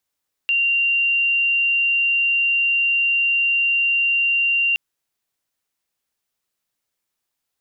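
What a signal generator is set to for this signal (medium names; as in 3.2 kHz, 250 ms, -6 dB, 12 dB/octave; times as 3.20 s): tone sine 2.77 kHz -15.5 dBFS 4.27 s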